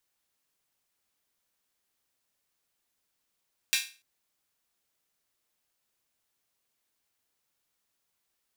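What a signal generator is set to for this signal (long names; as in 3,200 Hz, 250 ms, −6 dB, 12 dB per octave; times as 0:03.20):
open synth hi-hat length 0.29 s, high-pass 2,400 Hz, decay 0.34 s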